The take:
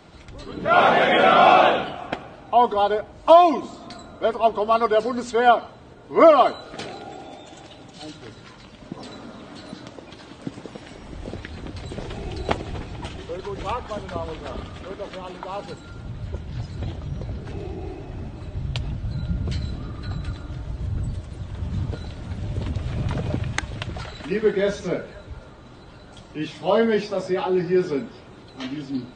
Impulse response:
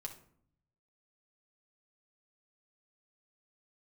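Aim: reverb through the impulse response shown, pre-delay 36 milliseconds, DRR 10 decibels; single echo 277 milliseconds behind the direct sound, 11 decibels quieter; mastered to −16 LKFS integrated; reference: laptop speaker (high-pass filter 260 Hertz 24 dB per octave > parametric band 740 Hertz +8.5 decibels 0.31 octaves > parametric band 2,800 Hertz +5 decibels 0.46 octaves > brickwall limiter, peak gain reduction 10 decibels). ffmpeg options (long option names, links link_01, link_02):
-filter_complex "[0:a]aecho=1:1:277:0.282,asplit=2[link_01][link_02];[1:a]atrim=start_sample=2205,adelay=36[link_03];[link_02][link_03]afir=irnorm=-1:irlink=0,volume=-7dB[link_04];[link_01][link_04]amix=inputs=2:normalize=0,highpass=frequency=260:width=0.5412,highpass=frequency=260:width=1.3066,equalizer=frequency=740:width_type=o:width=0.31:gain=8.5,equalizer=frequency=2800:width_type=o:width=0.46:gain=5,volume=4.5dB,alimiter=limit=-2dB:level=0:latency=1"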